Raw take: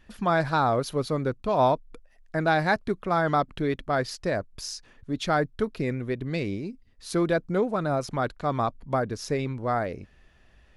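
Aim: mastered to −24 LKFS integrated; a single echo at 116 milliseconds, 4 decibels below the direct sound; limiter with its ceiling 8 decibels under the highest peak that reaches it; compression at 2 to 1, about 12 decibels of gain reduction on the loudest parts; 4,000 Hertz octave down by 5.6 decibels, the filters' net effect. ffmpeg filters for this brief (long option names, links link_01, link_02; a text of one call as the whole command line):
ffmpeg -i in.wav -af "equalizer=frequency=4000:width_type=o:gain=-7,acompressor=threshold=-41dB:ratio=2,alimiter=level_in=7dB:limit=-24dB:level=0:latency=1,volume=-7dB,aecho=1:1:116:0.631,volume=16dB" out.wav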